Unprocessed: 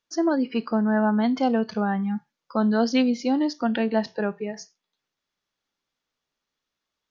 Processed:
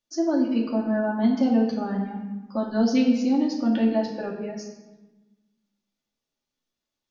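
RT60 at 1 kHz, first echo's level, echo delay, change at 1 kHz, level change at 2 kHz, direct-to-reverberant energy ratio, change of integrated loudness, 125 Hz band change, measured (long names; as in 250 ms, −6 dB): 1.2 s, no echo audible, no echo audible, −5.0 dB, −5.5 dB, −2.0 dB, 0.0 dB, can't be measured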